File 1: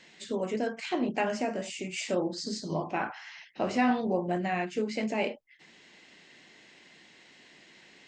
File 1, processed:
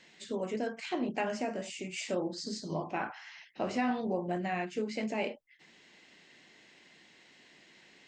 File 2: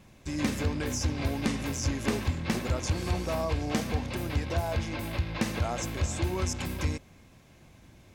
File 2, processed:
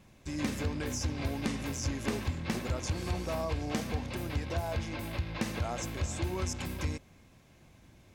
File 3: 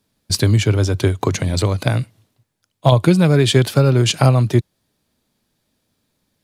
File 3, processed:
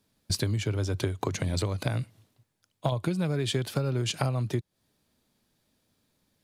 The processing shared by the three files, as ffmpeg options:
-af "acompressor=threshold=-22dB:ratio=6,volume=-3.5dB"

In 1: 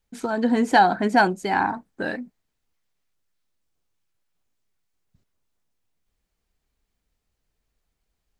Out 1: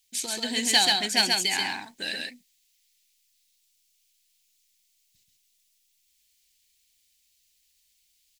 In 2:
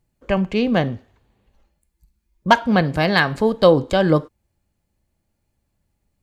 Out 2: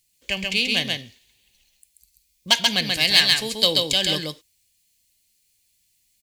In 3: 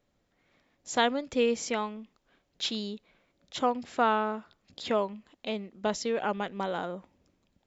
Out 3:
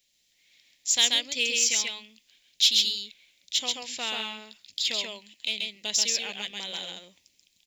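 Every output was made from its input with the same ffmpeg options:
-af "aecho=1:1:134:0.708,aexciter=amount=10.3:drive=9.4:freq=2.1k,acrusher=bits=9:mode=log:mix=0:aa=0.000001,volume=-14dB"

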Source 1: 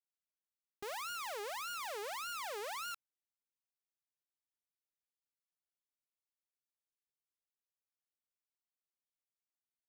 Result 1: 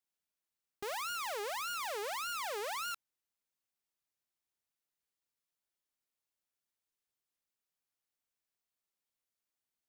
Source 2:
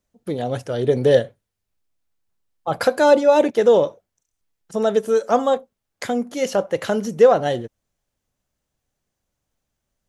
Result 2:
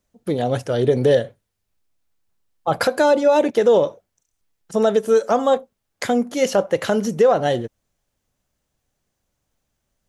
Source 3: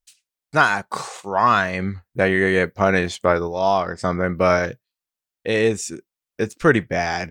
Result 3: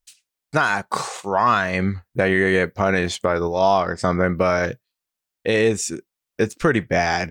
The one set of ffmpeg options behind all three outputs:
-af "alimiter=limit=-10.5dB:level=0:latency=1:release=155,volume=3.5dB"

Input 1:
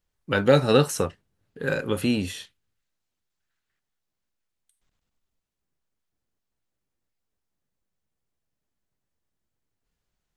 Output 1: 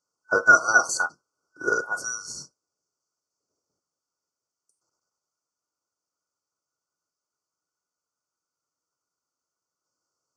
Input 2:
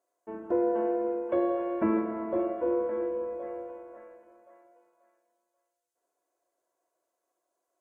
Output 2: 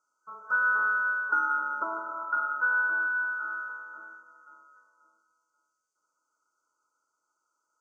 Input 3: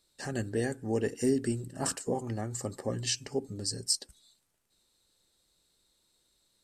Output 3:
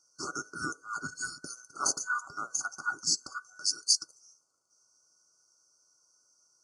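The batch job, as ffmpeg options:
-af "afftfilt=real='real(if(between(b,1,1012),(2*floor((b-1)/92)+1)*92-b,b),0)':imag='imag(if(between(b,1,1012),(2*floor((b-1)/92)+1)*92-b,b),0)*if(between(b,1,1012),-1,1)':win_size=2048:overlap=0.75,afftfilt=real='re*(1-between(b*sr/4096,1500,4300))':imag='im*(1-between(b*sr/4096,1500,4300))':win_size=4096:overlap=0.75,highpass=120,equalizer=f=210:t=q:w=4:g=-8,equalizer=f=760:t=q:w=4:g=-5,equalizer=f=6.2k:t=q:w=4:g=6,lowpass=f=8.1k:w=0.5412,lowpass=f=8.1k:w=1.3066,volume=4dB"

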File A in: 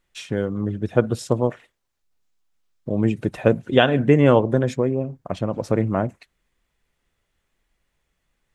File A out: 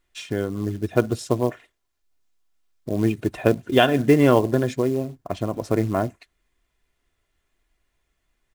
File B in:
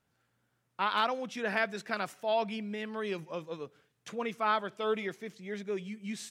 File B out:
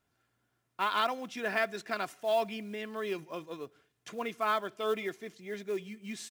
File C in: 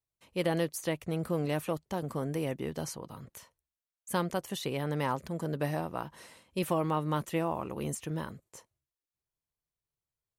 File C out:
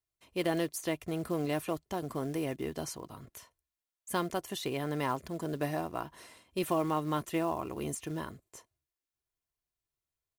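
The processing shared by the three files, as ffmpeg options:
-af "aecho=1:1:2.9:0.38,acrusher=bits=6:mode=log:mix=0:aa=0.000001,volume=-1dB"

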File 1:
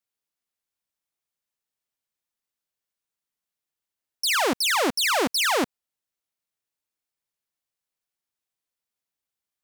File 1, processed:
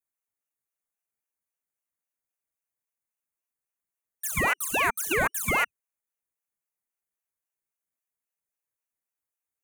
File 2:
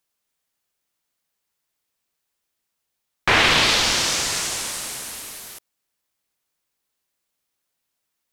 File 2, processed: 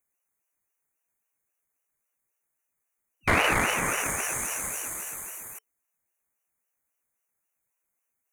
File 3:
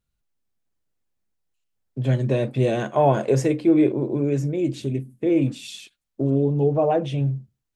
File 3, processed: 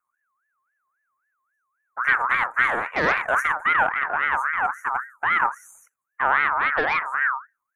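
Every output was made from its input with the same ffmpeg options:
-filter_complex "[0:a]afftfilt=real='re*(1-between(b*sr/4096,1300,7300))':imag='im*(1-between(b*sr/4096,1300,7300))':win_size=4096:overlap=0.75,acrossover=split=230|870[a][b][c];[b]alimiter=limit=-17dB:level=0:latency=1:release=58[d];[a][d][c]amix=inputs=3:normalize=0,aeval=exprs='0.355*(cos(1*acos(clip(val(0)/0.355,-1,1)))-cos(1*PI/2))+0.0708*(cos(2*acos(clip(val(0)/0.355,-1,1)))-cos(2*PI/2))+0.0251*(cos(6*acos(clip(val(0)/0.355,-1,1)))-cos(6*PI/2))+0.0447*(cos(8*acos(clip(val(0)/0.355,-1,1)))-cos(8*PI/2))':c=same,aeval=exprs='val(0)*sin(2*PI*1400*n/s+1400*0.25/3.7*sin(2*PI*3.7*n/s))':c=same,volume=2dB"

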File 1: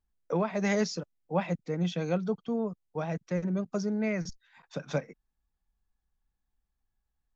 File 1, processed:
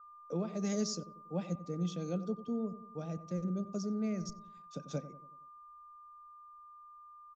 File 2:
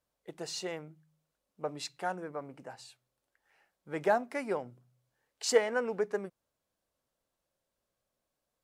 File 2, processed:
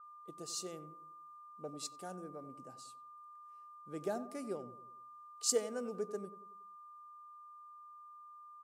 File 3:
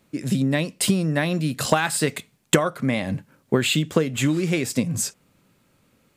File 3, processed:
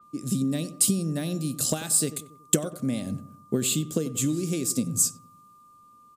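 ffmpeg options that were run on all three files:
-filter_complex "[0:a]equalizer=f=250:t=o:w=1:g=4,equalizer=f=1k:t=o:w=1:g=-11,equalizer=f=2k:t=o:w=1:g=-10,equalizer=f=8k:t=o:w=1:g=4,crystalizer=i=0.5:c=0,asplit=2[a][b];[b]adelay=93,lowpass=f=1.2k:p=1,volume=-13dB,asplit=2[c][d];[d]adelay=93,lowpass=f=1.2k:p=1,volume=0.51,asplit=2[e][f];[f]adelay=93,lowpass=f=1.2k:p=1,volume=0.51,asplit=2[g][h];[h]adelay=93,lowpass=f=1.2k:p=1,volume=0.51,asplit=2[i][j];[j]adelay=93,lowpass=f=1.2k:p=1,volume=0.51[k];[a][c][e][g][i][k]amix=inputs=6:normalize=0,aeval=exprs='val(0)+0.00562*sin(2*PI*1200*n/s)':c=same,adynamicequalizer=threshold=0.00891:dfrequency=4800:dqfactor=0.7:tfrequency=4800:tqfactor=0.7:attack=5:release=100:ratio=0.375:range=3:mode=boostabove:tftype=highshelf,volume=-7dB"

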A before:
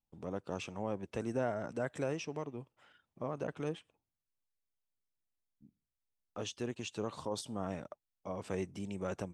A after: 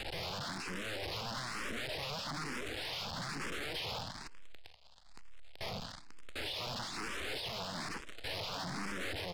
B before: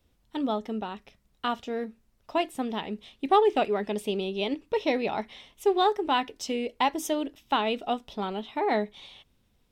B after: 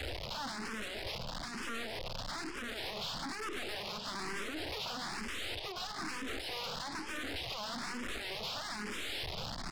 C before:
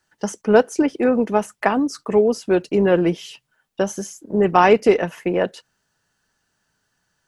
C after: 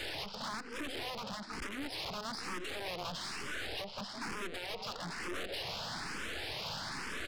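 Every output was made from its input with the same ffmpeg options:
-filter_complex "[0:a]aeval=exprs='val(0)+0.5*0.075*sgn(val(0))':c=same,asplit=5[a][b][c][d][e];[b]adelay=170,afreqshift=36,volume=-19dB[f];[c]adelay=340,afreqshift=72,volume=-25.9dB[g];[d]adelay=510,afreqshift=108,volume=-32.9dB[h];[e]adelay=680,afreqshift=144,volume=-39.8dB[i];[a][f][g][h][i]amix=inputs=5:normalize=0,acompressor=threshold=-24dB:ratio=16,highshelf=f=3k:g=4,acrossover=split=390|970|3500[j][k][l][m];[j]acompressor=threshold=-42dB:ratio=4[n];[k]acompressor=threshold=-38dB:ratio=4[o];[l]acompressor=threshold=-45dB:ratio=4[p];[m]acompressor=threshold=-35dB:ratio=4[q];[n][o][p][q]amix=inputs=4:normalize=0,aresample=11025,aeval=exprs='(mod(37.6*val(0)+1,2)-1)/37.6':c=same,aresample=44100,aeval=exprs='(tanh(79.4*val(0)+0.7)-tanh(0.7))/79.4':c=same,asplit=2[r][s];[s]afreqshift=1.1[t];[r][t]amix=inputs=2:normalize=1,volume=4.5dB"

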